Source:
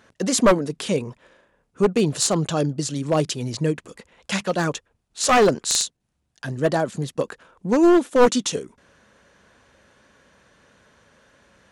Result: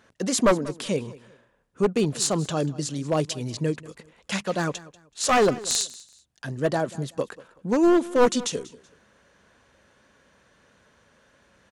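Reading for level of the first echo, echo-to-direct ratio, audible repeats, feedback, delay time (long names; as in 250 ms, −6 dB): −19.5 dB, −19.0 dB, 2, 27%, 189 ms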